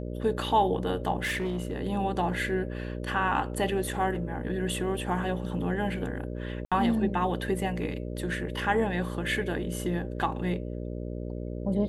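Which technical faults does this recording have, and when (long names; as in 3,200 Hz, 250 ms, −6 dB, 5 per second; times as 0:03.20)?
mains buzz 60 Hz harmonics 10 −35 dBFS
0:01.23–0:01.73: clipping −26 dBFS
0:06.65–0:06.72: drop-out 66 ms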